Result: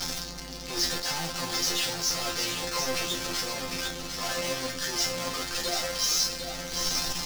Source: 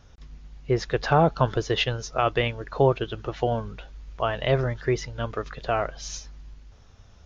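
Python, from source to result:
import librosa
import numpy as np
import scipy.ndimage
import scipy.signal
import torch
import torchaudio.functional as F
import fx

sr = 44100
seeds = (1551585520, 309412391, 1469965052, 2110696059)

p1 = np.sign(x) * np.sqrt(np.mean(np.square(x)))
p2 = fx.peak_eq(p1, sr, hz=5200.0, db=12.0, octaves=0.83)
p3 = fx.resonator_bank(p2, sr, root=53, chord='fifth', decay_s=0.32)
p4 = fx.quant_dither(p3, sr, seeds[0], bits=6, dither='none')
p5 = p3 + (p4 * 10.0 ** (-9.0 / 20.0))
p6 = fx.low_shelf(p5, sr, hz=120.0, db=-5.0)
p7 = p6 + fx.echo_single(p6, sr, ms=750, db=-6.5, dry=0)
p8 = fx.attack_slew(p7, sr, db_per_s=130.0)
y = p8 * 10.0 ** (7.5 / 20.0)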